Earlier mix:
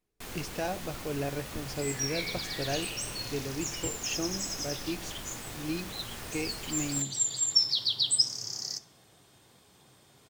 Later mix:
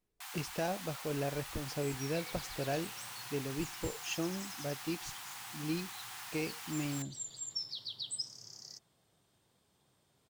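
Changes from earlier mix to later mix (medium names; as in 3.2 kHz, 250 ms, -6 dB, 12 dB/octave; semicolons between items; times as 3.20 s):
first sound: add brick-wall FIR high-pass 700 Hz; second sound -10.5 dB; reverb: off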